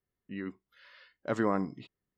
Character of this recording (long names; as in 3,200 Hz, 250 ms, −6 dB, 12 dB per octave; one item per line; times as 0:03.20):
background noise floor −90 dBFS
spectral slope −4.0 dB per octave